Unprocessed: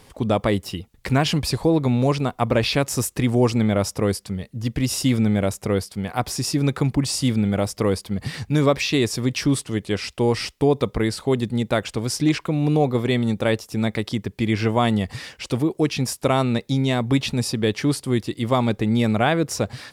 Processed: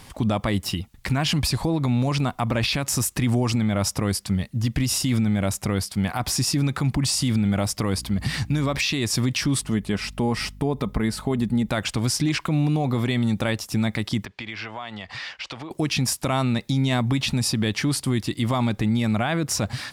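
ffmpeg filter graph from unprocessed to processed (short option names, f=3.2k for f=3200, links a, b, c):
-filter_complex "[0:a]asettb=1/sr,asplit=3[a][b][c];[a]atrim=end=7.954[d];[b]atrim=start=7.95:end=8.75,asetpts=PTS-STARTPTS,afade=t=in:d=0.004:c=qsin,afade=t=out:st=0.796:d=0.004:c=qsin,acompressor=threshold=-24dB:ratio=2.5:attack=3.2:release=140:knee=1:detection=peak,aeval=exprs='val(0)+0.00708*(sin(2*PI*60*n/s)+sin(2*PI*2*60*n/s)/2+sin(2*PI*3*60*n/s)/3+sin(2*PI*4*60*n/s)/4+sin(2*PI*5*60*n/s)/5)':c=same[e];[c]atrim=start=8.746[f];[d][e]acrossfade=d=0.004:c1=hsin:c2=qsin[g];[g][f]acrossfade=d=0.004:c1=qsin:c2=hsin,asettb=1/sr,asplit=3[h][i][j];[h]atrim=end=9.614[k];[i]atrim=start=9.61:end=11.69,asetpts=PTS-STARTPTS,afade=t=in:d=0.004:c=qsin,afade=t=out:st=2.076:d=0.004:c=qsin,equalizer=f=4.7k:t=o:w=2.7:g=-7.5,aecho=1:1:4.7:0.33,atrim=end_sample=91728,aeval=exprs='val(0)+0.00447*(sin(2*PI*50*n/s)+sin(2*PI*2*50*n/s)/2+sin(2*PI*3*50*n/s)/3+sin(2*PI*4*50*n/s)/4+sin(2*PI*5*50*n/s)/5)':c=same[l];[j]atrim=start=11.686[m];[k][l]acrossfade=d=0.004:c1=hsin:c2=qsin[n];[n][m]acrossfade=d=0.004:c1=qsin:c2=hsin,asettb=1/sr,asplit=3[o][p][q];[o]atrim=end=14.254[r];[p]atrim=start=14.25:end=15.71,asetpts=PTS-STARTPTS,afade=t=in:d=0.004:c=qsin,afade=t=out:st=1.456:d=0.004:c=qsin,acrossover=split=490 5400:gain=0.158 1 0.0891[s][t][u];[s][t][u]amix=inputs=3:normalize=0,acompressor=threshold=-34dB:ratio=6:attack=3.2:release=140:knee=1:detection=peak,lowpass=8.8k[v];[q]atrim=start=15.706[w];[r][v]acrossfade=d=0.004:c1=hsin:c2=qsin[x];[x][w]acrossfade=d=0.004:c1=qsin:c2=hsin,equalizer=f=450:t=o:w=0.73:g=-9.5,alimiter=limit=-19.5dB:level=0:latency=1:release=73,volume=5.5dB"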